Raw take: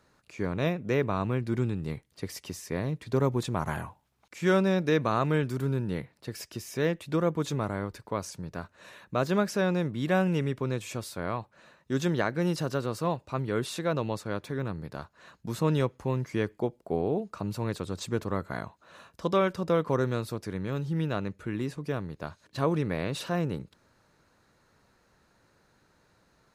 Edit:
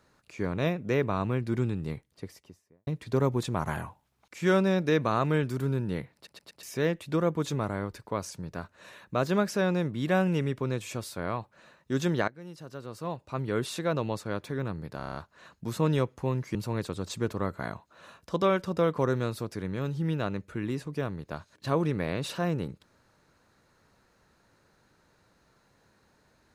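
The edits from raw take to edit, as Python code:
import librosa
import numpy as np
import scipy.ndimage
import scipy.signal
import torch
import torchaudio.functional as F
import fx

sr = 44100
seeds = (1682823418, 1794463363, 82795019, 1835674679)

y = fx.studio_fade_out(x, sr, start_s=1.77, length_s=1.1)
y = fx.edit(y, sr, fx.stutter_over(start_s=6.15, slice_s=0.12, count=4),
    fx.fade_in_from(start_s=12.28, length_s=1.21, curve='qua', floor_db=-18.0),
    fx.stutter(start_s=14.97, slice_s=0.03, count=7),
    fx.cut(start_s=16.37, length_s=1.09), tone=tone)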